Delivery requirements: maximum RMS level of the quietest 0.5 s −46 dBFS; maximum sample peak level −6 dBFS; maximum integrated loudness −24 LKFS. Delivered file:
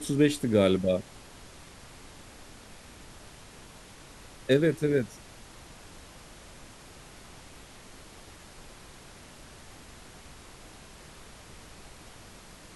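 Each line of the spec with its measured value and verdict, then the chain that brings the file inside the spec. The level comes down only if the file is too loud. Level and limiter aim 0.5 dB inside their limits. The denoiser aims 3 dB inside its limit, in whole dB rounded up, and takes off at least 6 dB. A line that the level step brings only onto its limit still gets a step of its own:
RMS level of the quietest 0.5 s −49 dBFS: in spec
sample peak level −10.5 dBFS: in spec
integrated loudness −26.0 LKFS: in spec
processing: no processing needed

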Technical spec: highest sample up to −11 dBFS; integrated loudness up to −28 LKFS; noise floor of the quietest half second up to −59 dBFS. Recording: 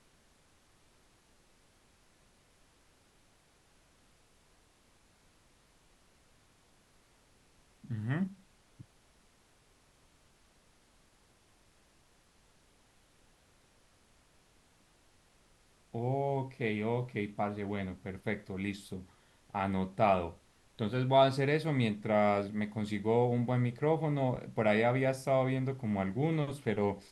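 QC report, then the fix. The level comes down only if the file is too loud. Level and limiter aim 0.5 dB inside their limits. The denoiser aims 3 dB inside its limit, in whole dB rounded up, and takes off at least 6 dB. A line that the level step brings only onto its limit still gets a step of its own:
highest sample −13.0 dBFS: in spec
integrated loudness −32.5 LKFS: in spec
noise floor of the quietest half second −67 dBFS: in spec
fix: no processing needed

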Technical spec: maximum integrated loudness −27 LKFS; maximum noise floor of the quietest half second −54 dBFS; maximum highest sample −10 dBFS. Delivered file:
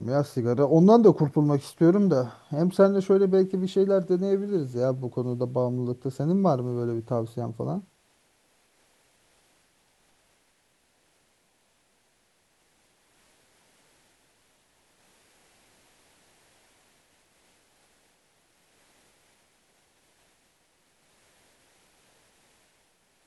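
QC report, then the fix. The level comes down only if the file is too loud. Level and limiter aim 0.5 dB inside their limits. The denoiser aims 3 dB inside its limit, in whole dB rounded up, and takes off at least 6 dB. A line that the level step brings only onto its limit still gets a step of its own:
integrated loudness −24.0 LKFS: out of spec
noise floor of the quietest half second −68 dBFS: in spec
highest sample −6.5 dBFS: out of spec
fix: level −3.5 dB
brickwall limiter −10.5 dBFS

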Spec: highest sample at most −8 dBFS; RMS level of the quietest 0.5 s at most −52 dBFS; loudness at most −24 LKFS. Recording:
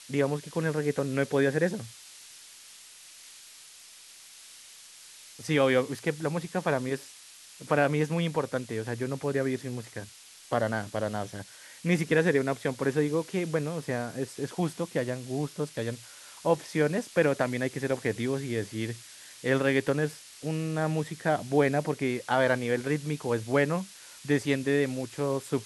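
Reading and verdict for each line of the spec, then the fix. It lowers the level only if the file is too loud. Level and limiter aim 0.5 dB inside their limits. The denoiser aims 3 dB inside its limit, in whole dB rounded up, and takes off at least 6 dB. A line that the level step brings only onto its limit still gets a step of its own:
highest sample −9.5 dBFS: in spec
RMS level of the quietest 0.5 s −51 dBFS: out of spec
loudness −29.0 LKFS: in spec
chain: broadband denoise 6 dB, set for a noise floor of −51 dBFS

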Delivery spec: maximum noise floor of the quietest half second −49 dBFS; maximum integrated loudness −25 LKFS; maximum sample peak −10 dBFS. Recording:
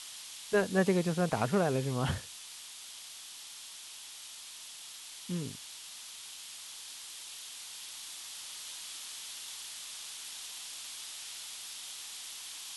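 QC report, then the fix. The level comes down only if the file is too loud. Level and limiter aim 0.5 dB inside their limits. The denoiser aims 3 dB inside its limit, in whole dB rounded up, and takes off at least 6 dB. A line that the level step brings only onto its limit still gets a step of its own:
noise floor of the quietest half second −48 dBFS: out of spec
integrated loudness −37.0 LKFS: in spec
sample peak −14.5 dBFS: in spec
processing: broadband denoise 6 dB, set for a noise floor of −48 dBFS

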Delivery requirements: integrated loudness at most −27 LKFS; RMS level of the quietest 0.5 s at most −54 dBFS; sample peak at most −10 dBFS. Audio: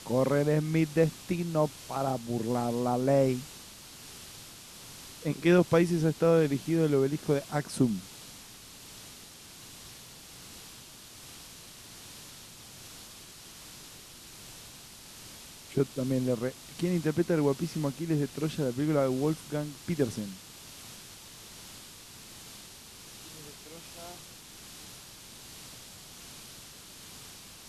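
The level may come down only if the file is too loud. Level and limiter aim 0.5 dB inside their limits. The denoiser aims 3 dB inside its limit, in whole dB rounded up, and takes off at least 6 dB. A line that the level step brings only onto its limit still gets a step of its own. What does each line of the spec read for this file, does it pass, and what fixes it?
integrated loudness −29.0 LKFS: in spec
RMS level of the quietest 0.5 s −49 dBFS: out of spec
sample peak −11.5 dBFS: in spec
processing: broadband denoise 8 dB, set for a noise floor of −49 dBFS

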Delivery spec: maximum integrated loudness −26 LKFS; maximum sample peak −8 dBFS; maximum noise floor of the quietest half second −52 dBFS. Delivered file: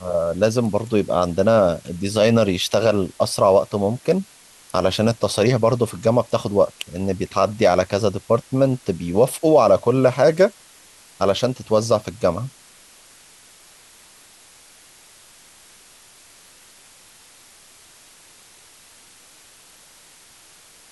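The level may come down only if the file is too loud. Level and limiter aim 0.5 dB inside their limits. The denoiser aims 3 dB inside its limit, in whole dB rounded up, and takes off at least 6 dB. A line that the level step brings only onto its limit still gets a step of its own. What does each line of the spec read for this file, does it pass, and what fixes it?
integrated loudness −19.5 LKFS: out of spec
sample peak −5.0 dBFS: out of spec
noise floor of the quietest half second −49 dBFS: out of spec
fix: level −7 dB

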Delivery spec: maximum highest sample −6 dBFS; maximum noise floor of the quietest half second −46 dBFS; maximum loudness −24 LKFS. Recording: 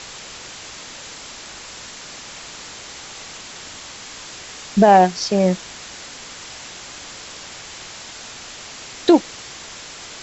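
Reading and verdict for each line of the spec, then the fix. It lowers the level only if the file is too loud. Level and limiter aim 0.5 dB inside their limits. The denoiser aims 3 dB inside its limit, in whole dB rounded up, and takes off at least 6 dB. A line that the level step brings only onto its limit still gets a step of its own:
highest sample −2.0 dBFS: out of spec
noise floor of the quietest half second −37 dBFS: out of spec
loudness −16.5 LKFS: out of spec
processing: broadband denoise 6 dB, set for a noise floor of −37 dBFS
level −8 dB

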